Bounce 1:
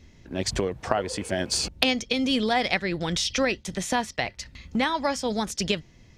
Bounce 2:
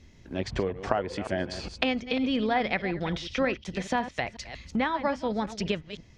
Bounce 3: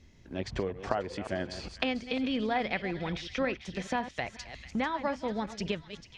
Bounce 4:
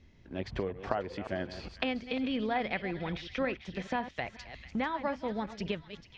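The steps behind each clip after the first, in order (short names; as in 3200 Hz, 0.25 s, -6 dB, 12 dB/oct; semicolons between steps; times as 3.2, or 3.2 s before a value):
reverse delay 0.182 s, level -12.5 dB; treble ducked by the level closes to 2400 Hz, closed at -23.5 dBFS; gain -2 dB
thin delay 0.444 s, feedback 44%, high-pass 1900 Hz, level -11.5 dB; gain -4 dB
LPF 4200 Hz 12 dB/oct; gain -1.5 dB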